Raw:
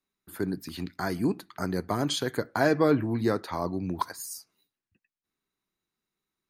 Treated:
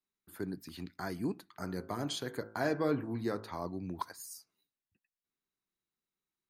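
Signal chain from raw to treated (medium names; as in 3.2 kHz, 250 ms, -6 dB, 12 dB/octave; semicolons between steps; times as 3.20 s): 1.49–3.51 s: de-hum 54.08 Hz, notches 30; trim -8.5 dB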